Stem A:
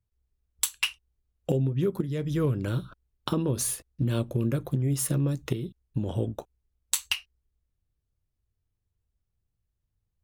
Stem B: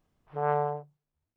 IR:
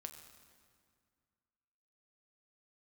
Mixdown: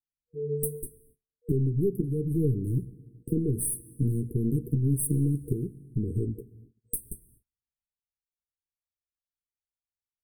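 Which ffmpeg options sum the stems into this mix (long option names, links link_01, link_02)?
-filter_complex "[0:a]aeval=exprs='(tanh(10*val(0)+0.5)-tanh(0.5))/10':channel_layout=same,volume=1.5dB,asplit=2[link_01][link_02];[link_02]volume=-4.5dB[link_03];[1:a]flanger=delay=18:depth=3.3:speed=2.5,volume=1dB,asplit=2[link_04][link_05];[link_05]volume=-4.5dB[link_06];[2:a]atrim=start_sample=2205[link_07];[link_03][link_06]amix=inputs=2:normalize=0[link_08];[link_08][link_07]afir=irnorm=-1:irlink=0[link_09];[link_01][link_04][link_09]amix=inputs=3:normalize=0,agate=range=-34dB:threshold=-52dB:ratio=16:detection=peak,afftfilt=real='re*(1-between(b*sr/4096,480,8200))':imag='im*(1-between(b*sr/4096,480,8200))':win_size=4096:overlap=0.75,equalizer=frequency=5700:width_type=o:width=0.57:gain=-9.5"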